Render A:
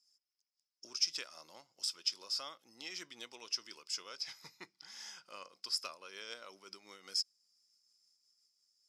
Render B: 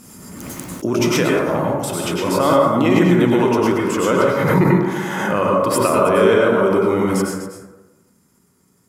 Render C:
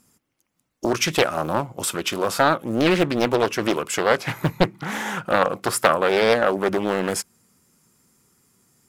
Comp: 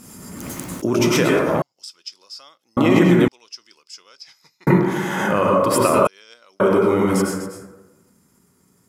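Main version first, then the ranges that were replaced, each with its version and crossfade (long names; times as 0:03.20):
B
0:01.62–0:02.77: punch in from A
0:03.28–0:04.67: punch in from A
0:06.07–0:06.60: punch in from A
not used: C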